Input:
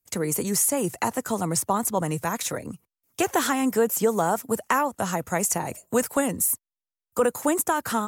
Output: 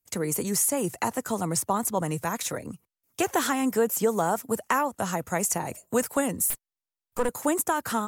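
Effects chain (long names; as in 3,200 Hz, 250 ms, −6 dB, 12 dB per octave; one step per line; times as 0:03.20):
0:06.50–0:07.29: gain on one half-wave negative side −12 dB
level −2 dB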